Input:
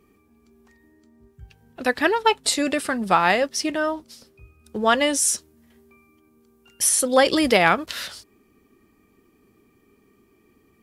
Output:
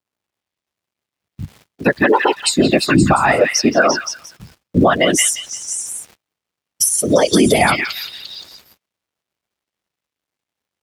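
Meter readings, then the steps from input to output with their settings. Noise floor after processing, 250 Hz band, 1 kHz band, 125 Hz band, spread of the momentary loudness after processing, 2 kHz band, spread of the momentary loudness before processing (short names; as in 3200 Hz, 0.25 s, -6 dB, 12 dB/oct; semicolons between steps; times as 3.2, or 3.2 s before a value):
under -85 dBFS, +9.0 dB, +3.5 dB, +16.0 dB, 18 LU, +5.5 dB, 11 LU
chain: per-bin expansion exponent 2; high shelf 5500 Hz +7 dB; compressor 12:1, threshold -26 dBFS, peak gain reduction 14 dB; whisperiser; crackle 360/s -48 dBFS; tilt shelf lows +4 dB, about 1400 Hz; delay with a stepping band-pass 0.174 s, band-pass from 2600 Hz, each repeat 0.7 oct, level -1 dB; gate -59 dBFS, range -34 dB; HPF 52 Hz; maximiser +18.5 dB; gain -1.5 dB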